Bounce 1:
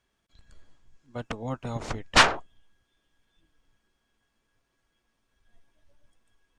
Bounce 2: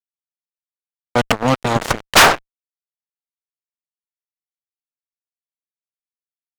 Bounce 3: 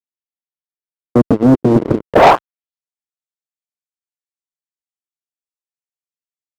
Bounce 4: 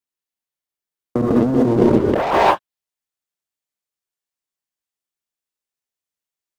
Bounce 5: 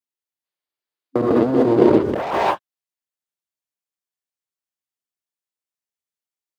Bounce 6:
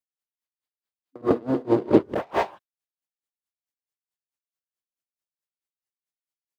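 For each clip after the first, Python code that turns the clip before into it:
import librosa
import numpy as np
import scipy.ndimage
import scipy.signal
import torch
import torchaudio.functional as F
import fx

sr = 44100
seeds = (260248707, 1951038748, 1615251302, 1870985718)

y1 = fx.low_shelf(x, sr, hz=300.0, db=-6.5)
y1 = fx.rider(y1, sr, range_db=5, speed_s=2.0)
y1 = fx.fuzz(y1, sr, gain_db=28.0, gate_db=-35.0)
y1 = F.gain(torch.from_numpy(y1), 7.5).numpy()
y2 = scipy.signal.sosfilt(scipy.signal.butter(2, 84.0, 'highpass', fs=sr, output='sos'), y1)
y2 = fx.filter_sweep_lowpass(y2, sr, from_hz=350.0, to_hz=7800.0, start_s=2.07, end_s=2.87, q=2.5)
y2 = fx.leveller(y2, sr, passes=3)
y2 = F.gain(torch.from_numpy(y2), -2.5).numpy()
y3 = fx.rev_gated(y2, sr, seeds[0], gate_ms=210, shape='rising', drr_db=5.5)
y3 = fx.over_compress(y3, sr, threshold_db=-15.0, ratio=-1.0)
y4 = fx.spec_box(y3, sr, start_s=0.45, length_s=1.58, low_hz=260.0, high_hz=5100.0, gain_db=7)
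y4 = scipy.signal.sosfilt(scipy.signal.butter(2, 65.0, 'highpass', fs=sr, output='sos'), y4)
y4 = F.gain(torch.from_numpy(y4), -5.0).numpy()
y5 = y4 * 10.0 ** (-29 * (0.5 - 0.5 * np.cos(2.0 * np.pi * 4.6 * np.arange(len(y4)) / sr)) / 20.0)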